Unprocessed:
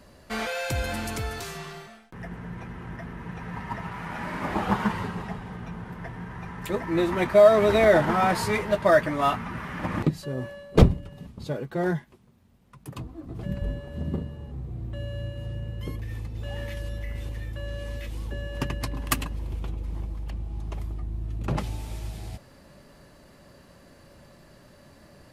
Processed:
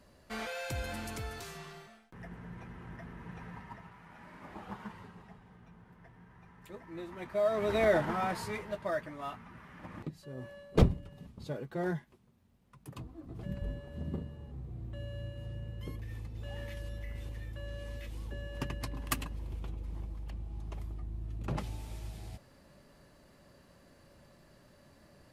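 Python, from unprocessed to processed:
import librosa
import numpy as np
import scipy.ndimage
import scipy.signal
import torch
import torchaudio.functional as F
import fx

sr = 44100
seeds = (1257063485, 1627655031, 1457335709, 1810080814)

y = fx.gain(x, sr, db=fx.line((3.42, -9.0), (3.99, -19.5), (7.16, -19.5), (7.84, -8.0), (9.19, -17.5), (10.11, -17.5), (10.58, -8.0)))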